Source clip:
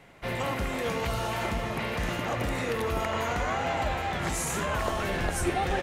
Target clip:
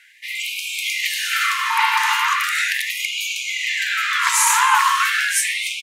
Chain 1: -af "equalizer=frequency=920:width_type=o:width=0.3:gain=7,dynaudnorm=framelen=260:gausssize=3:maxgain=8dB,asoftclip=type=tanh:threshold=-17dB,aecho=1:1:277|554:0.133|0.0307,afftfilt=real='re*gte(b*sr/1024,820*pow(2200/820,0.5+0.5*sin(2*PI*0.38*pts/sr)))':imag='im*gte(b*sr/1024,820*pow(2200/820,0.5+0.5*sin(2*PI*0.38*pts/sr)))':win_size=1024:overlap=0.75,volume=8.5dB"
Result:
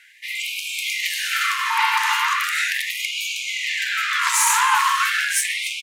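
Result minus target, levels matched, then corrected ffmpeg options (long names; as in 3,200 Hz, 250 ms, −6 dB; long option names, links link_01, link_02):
soft clipping: distortion +15 dB
-af "equalizer=frequency=920:width_type=o:width=0.3:gain=7,dynaudnorm=framelen=260:gausssize=3:maxgain=8dB,asoftclip=type=tanh:threshold=-7dB,aecho=1:1:277|554:0.133|0.0307,afftfilt=real='re*gte(b*sr/1024,820*pow(2200/820,0.5+0.5*sin(2*PI*0.38*pts/sr)))':imag='im*gte(b*sr/1024,820*pow(2200/820,0.5+0.5*sin(2*PI*0.38*pts/sr)))':win_size=1024:overlap=0.75,volume=8.5dB"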